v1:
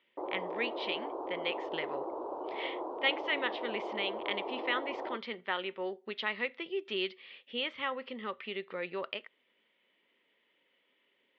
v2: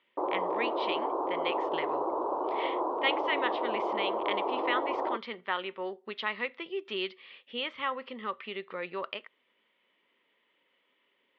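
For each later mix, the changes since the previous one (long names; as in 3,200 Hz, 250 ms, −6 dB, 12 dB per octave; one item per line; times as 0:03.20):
background +6.0 dB
master: add parametric band 1,100 Hz +6 dB 0.64 octaves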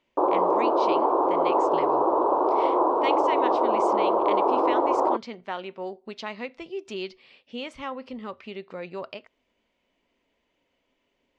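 speech: remove loudspeaker in its box 260–3,700 Hz, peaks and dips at 270 Hz −6 dB, 680 Hz −8 dB, 1,200 Hz +6 dB, 1,900 Hz +7 dB, 3,300 Hz +7 dB
background +9.5 dB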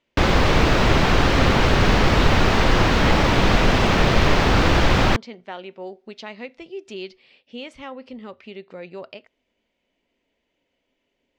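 background: remove elliptic band-pass filter 330–1,000 Hz, stop band 40 dB
master: add parametric band 1,100 Hz −6 dB 0.64 octaves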